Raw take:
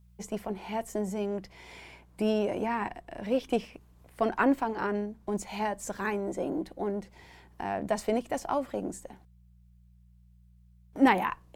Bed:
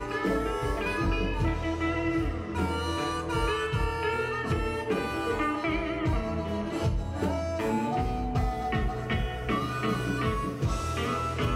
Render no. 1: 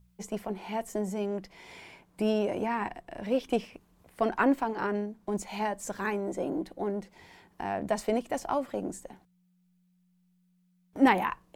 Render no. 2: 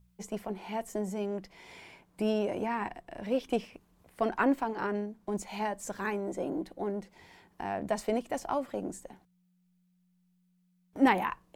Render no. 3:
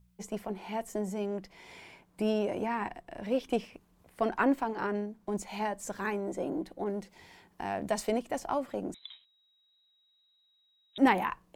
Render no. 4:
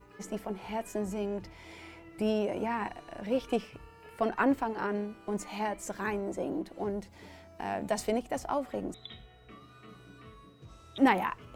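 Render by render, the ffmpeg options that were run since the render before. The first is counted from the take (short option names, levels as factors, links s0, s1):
-af "bandreject=f=60:t=h:w=4,bandreject=f=120:t=h:w=4"
-af "volume=0.794"
-filter_complex "[0:a]asettb=1/sr,asplit=3[s0][s1][s2];[s0]atrim=end=6.844[s3];[s1]atrim=start=6.84:end=8.12,asetpts=PTS-STARTPTS,afade=t=in:d=0.004:c=qsin,afade=t=out:st=1.276:d=0.004:c=qsin,adynamicequalizer=threshold=0.00251:dfrequency=2500:dqfactor=0.7:tfrequency=2500:tqfactor=0.7:attack=5:release=100:ratio=0.375:range=2.5:mode=boostabove:tftype=highshelf[s4];[s2]atrim=start=8.116[s5];[s3][s4]acrossfade=d=0.004:c1=hsin:c2=qsin[s6];[s6][s5]acrossfade=d=0.004:c1=qsin:c2=hsin,asettb=1/sr,asplit=3[s7][s8][s9];[s7]atrim=end=8.944[s10];[s8]atrim=start=8.94:end=10.98,asetpts=PTS-STARTPTS,afade=t=in:d=0.004:c=qsin,afade=t=out:st=2.036:d=0.004:c=qsin,lowpass=f=3400:t=q:w=0.5098,lowpass=f=3400:t=q:w=0.6013,lowpass=f=3400:t=q:w=0.9,lowpass=f=3400:t=q:w=2.563,afreqshift=-4000[s11];[s9]atrim=start=10.976[s12];[s10][s11]acrossfade=d=0.004:c1=hsin:c2=qsin[s13];[s13][s12]acrossfade=d=0.004:c1=qsin:c2=hsin"
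-filter_complex "[1:a]volume=0.0668[s0];[0:a][s0]amix=inputs=2:normalize=0"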